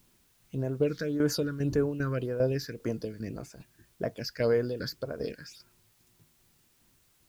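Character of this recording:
tremolo saw down 2.5 Hz, depth 70%
phaser sweep stages 6, 1.8 Hz, lowest notch 710–4,100 Hz
a quantiser's noise floor 12 bits, dither triangular

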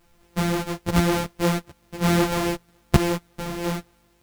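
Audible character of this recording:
a buzz of ramps at a fixed pitch in blocks of 256 samples
tremolo saw down 1.1 Hz, depth 30%
a quantiser's noise floor 12 bits, dither triangular
a shimmering, thickened sound

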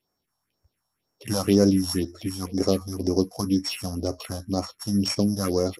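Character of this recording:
a buzz of ramps at a fixed pitch in blocks of 8 samples
phaser sweep stages 4, 2 Hz, lowest notch 360–3,300 Hz
MP2

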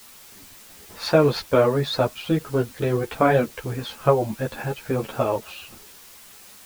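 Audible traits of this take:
a quantiser's noise floor 8 bits, dither triangular
a shimmering, thickened sound

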